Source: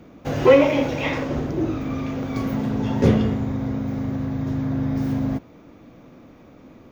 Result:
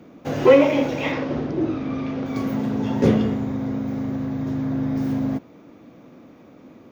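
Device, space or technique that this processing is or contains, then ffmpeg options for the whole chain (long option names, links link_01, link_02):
filter by subtraction: -filter_complex "[0:a]asplit=2[link_01][link_02];[link_02]lowpass=240,volume=-1[link_03];[link_01][link_03]amix=inputs=2:normalize=0,asettb=1/sr,asplit=3[link_04][link_05][link_06];[link_04]atrim=end=1.124[link_07];[link_05]atrim=start=1.12:end=2.26,asetpts=PTS-STARTPTS,afade=type=in:duration=0.004:curve=qsin,afade=type=out:start_time=1.136:duration=0.004:curve=qsin,lowpass=frequency=5500:width=0.5412,lowpass=frequency=5500:width=1.3066[link_08];[link_06]atrim=start=2.256[link_09];[link_07][link_08]acrossfade=duration=0.004:curve1=hsin:curve2=qsin[link_10];[link_10][link_09]acrossfade=duration=0.004:curve1=qsin:curve2=hsin,volume=-1dB"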